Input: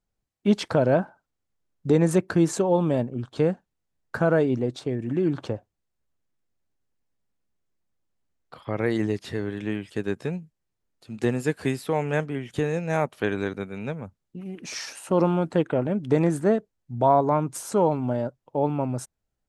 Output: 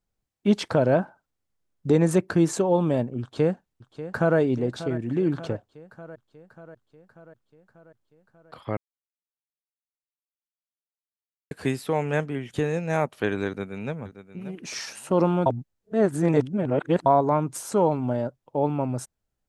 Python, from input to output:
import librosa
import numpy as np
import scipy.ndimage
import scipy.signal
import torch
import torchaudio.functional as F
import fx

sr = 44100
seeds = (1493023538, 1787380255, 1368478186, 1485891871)

y = fx.echo_throw(x, sr, start_s=3.21, length_s=1.17, ms=590, feedback_pct=65, wet_db=-13.5)
y = fx.echo_throw(y, sr, start_s=13.47, length_s=0.49, ms=580, feedback_pct=15, wet_db=-13.0)
y = fx.edit(y, sr, fx.silence(start_s=8.77, length_s=2.74),
    fx.reverse_span(start_s=15.46, length_s=1.6), tone=tone)